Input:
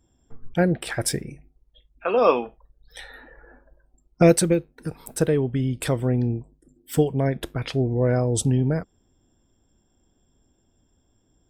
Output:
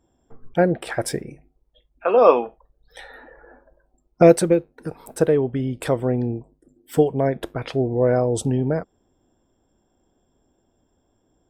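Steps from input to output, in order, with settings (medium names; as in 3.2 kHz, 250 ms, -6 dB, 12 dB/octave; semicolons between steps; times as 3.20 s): peaking EQ 650 Hz +10.5 dB 2.9 oct; trim -5 dB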